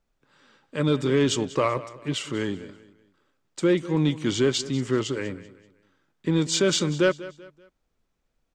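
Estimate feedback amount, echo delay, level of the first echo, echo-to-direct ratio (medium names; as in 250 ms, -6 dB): 36%, 192 ms, -17.0 dB, -16.5 dB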